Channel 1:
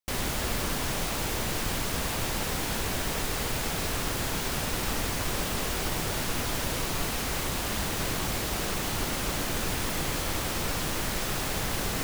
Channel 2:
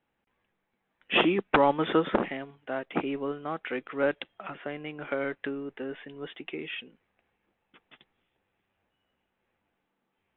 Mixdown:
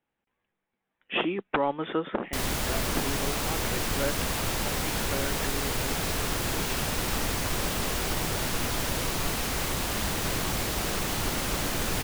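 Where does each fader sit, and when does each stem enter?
+1.0, -4.5 dB; 2.25, 0.00 s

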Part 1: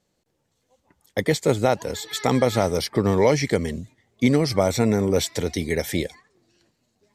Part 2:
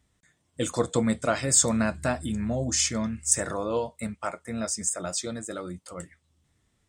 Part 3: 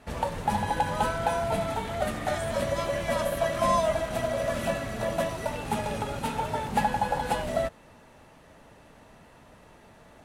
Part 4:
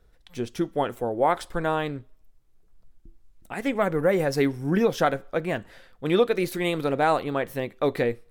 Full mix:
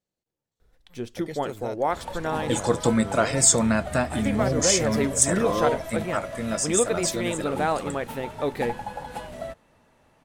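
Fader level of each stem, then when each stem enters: -16.5, +3.0, -7.5, -3.0 dB; 0.00, 1.90, 1.85, 0.60 s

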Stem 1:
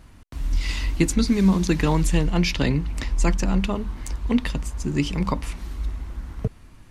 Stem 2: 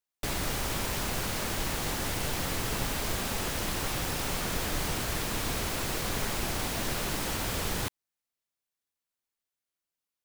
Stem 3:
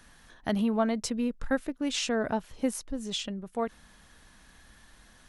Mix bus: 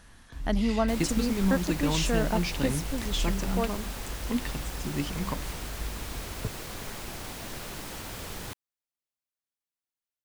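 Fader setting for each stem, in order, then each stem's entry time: -8.5, -7.0, 0.0 dB; 0.00, 0.65, 0.00 s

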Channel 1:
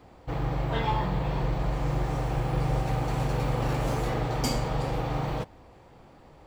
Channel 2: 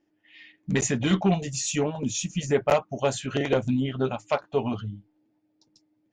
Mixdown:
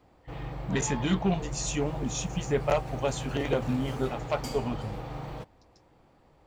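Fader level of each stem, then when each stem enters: -8.5, -4.5 dB; 0.00, 0.00 s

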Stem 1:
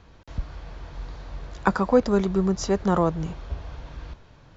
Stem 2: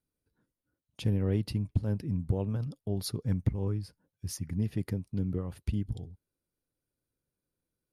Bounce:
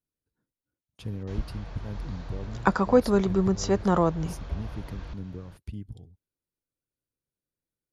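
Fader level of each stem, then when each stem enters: -1.0, -6.5 dB; 1.00, 0.00 s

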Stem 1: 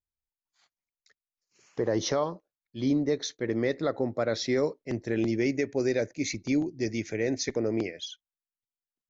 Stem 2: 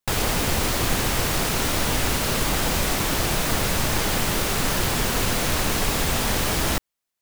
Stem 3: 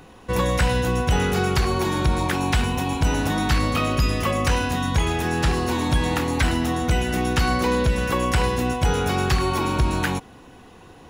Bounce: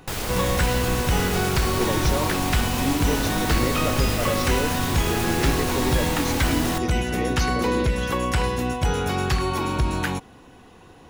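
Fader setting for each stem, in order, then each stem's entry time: -1.5, -5.5, -2.0 dB; 0.00, 0.00, 0.00 s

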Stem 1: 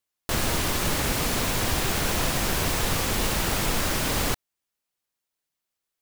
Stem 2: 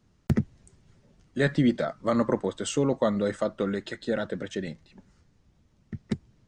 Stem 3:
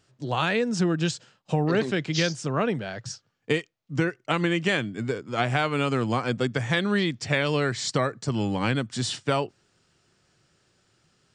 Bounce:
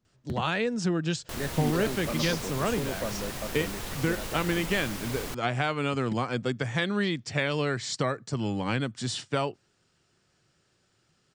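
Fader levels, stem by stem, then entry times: -11.5, -10.0, -3.5 dB; 1.00, 0.00, 0.05 s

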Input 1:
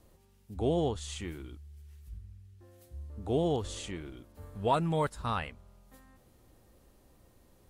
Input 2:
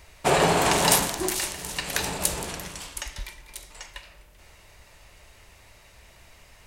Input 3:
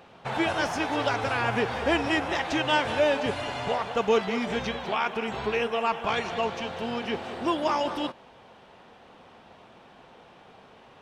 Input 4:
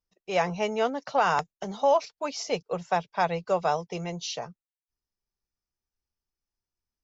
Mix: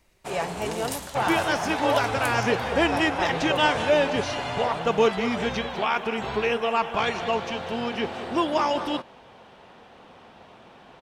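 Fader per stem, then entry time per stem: -7.0, -14.0, +2.5, -4.0 dB; 0.00, 0.00, 0.90, 0.00 s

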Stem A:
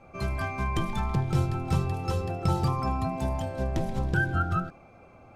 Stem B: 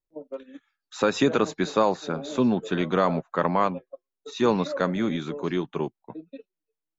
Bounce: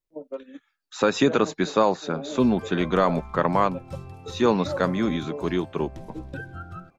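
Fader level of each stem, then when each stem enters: -11.5, +1.5 dB; 2.20, 0.00 s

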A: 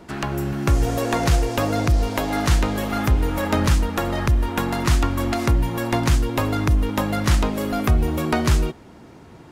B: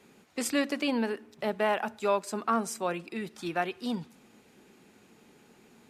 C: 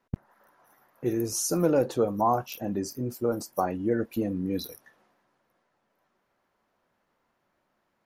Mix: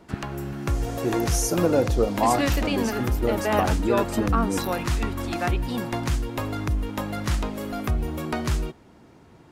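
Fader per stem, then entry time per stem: -7.0, +2.0, +2.0 dB; 0.00, 1.85, 0.00 s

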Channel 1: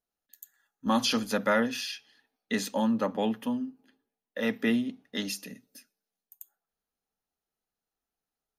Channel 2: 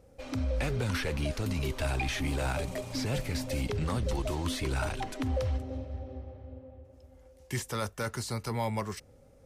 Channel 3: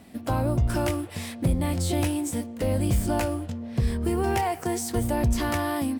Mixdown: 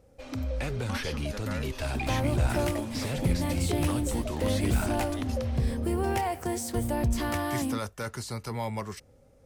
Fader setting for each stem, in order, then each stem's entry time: -13.5, -1.0, -3.5 dB; 0.00, 0.00, 1.80 s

